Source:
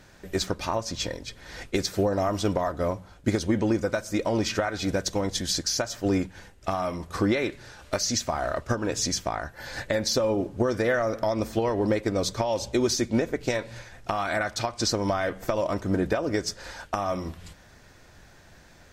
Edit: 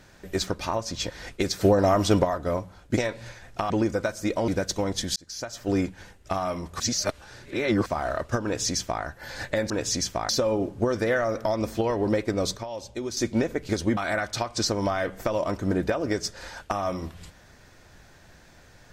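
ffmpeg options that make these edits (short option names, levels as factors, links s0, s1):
-filter_complex "[0:a]asplit=16[s0][s1][s2][s3][s4][s5][s6][s7][s8][s9][s10][s11][s12][s13][s14][s15];[s0]atrim=end=1.102[s16];[s1]atrim=start=1.438:end=1.952[s17];[s2]atrim=start=1.948:end=2.592,asetpts=PTS-STARTPTS,volume=1.78[s18];[s3]atrim=start=2.588:end=3.312[s19];[s4]atrim=start=13.468:end=14.202[s20];[s5]atrim=start=3.588:end=4.372[s21];[s6]atrim=start=4.848:end=5.53,asetpts=PTS-STARTPTS,afade=t=out:st=0.678:d=0.004:c=hsin[s22];[s7]atrim=start=5.53:end=7.172,asetpts=PTS-STARTPTS,afade=t=in:d=0.6[s23];[s8]atrim=start=7.168:end=8.232,asetpts=PTS-STARTPTS,areverse[s24];[s9]atrim=start=8.228:end=10.072[s25];[s10]atrim=start=8.808:end=9.402[s26];[s11]atrim=start=10.068:end=12.352[s27];[s12]atrim=start=12.348:end=12.952,asetpts=PTS-STARTPTS,volume=0.376[s28];[s13]atrim=start=12.948:end=13.472[s29];[s14]atrim=start=3.308:end=3.592[s30];[s15]atrim=start=14.198[s31];[s16][s17]acrossfade=d=0.004:c1=hsin:c2=hsin[s32];[s32][s18]acrossfade=d=0.004:c1=hsin:c2=hsin[s33];[s33][s19]acrossfade=d=0.004:c1=hsin:c2=hsin[s34];[s34][s20]acrossfade=d=0.004:c1=hsin:c2=hsin[s35];[s35][s21]acrossfade=d=0.004:c1=hsin:c2=hsin[s36];[s22][s23]concat=n=2:v=0:a=1[s37];[s36][s37]acrossfade=d=0.004:c1=hsin:c2=hsin[s38];[s38][s24]acrossfade=d=0.004:c1=hsin:c2=hsin[s39];[s39][s25]acrossfade=d=0.004:c1=hsin:c2=hsin[s40];[s40][s26]acrossfade=d=0.004:c1=hsin:c2=hsin[s41];[s41][s27]acrossfade=d=0.004:c1=hsin:c2=hsin[s42];[s42][s28]acrossfade=d=0.004:c1=hsin:c2=hsin[s43];[s43][s29]acrossfade=d=0.004:c1=hsin:c2=hsin[s44];[s44][s30]acrossfade=d=0.004:c1=hsin:c2=hsin[s45];[s45][s31]acrossfade=d=0.004:c1=hsin:c2=hsin"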